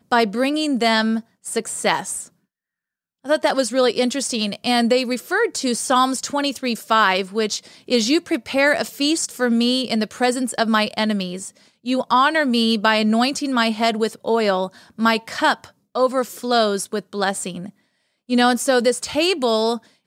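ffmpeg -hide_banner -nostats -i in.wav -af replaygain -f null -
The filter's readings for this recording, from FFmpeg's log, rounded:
track_gain = -0.4 dB
track_peak = 0.494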